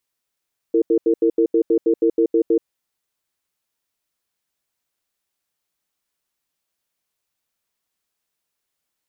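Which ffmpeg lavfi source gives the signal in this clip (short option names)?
-f lavfi -i "aevalsrc='0.168*(sin(2*PI*333*t)+sin(2*PI*457*t))*clip(min(mod(t,0.16),0.08-mod(t,0.16))/0.005,0,1)':d=1.91:s=44100"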